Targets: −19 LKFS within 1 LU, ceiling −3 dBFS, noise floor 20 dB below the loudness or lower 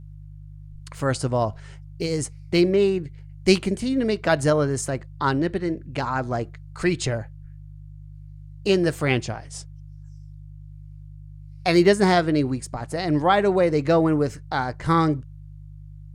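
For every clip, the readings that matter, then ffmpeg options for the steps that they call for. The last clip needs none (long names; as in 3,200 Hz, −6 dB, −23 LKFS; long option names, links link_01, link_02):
mains hum 50 Hz; hum harmonics up to 150 Hz; level of the hum −38 dBFS; integrated loudness −22.5 LKFS; sample peak −3.0 dBFS; target loudness −19.0 LKFS
→ -af "bandreject=frequency=50:width_type=h:width=4,bandreject=frequency=100:width_type=h:width=4,bandreject=frequency=150:width_type=h:width=4"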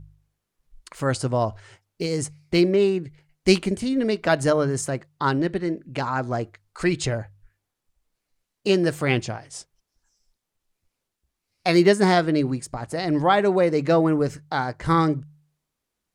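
mains hum none found; integrated loudness −23.0 LKFS; sample peak −3.0 dBFS; target loudness −19.0 LKFS
→ -af "volume=4dB,alimiter=limit=-3dB:level=0:latency=1"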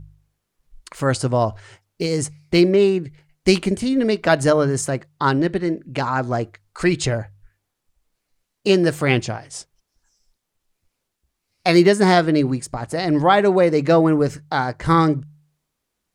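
integrated loudness −19.0 LKFS; sample peak −3.0 dBFS; background noise floor −78 dBFS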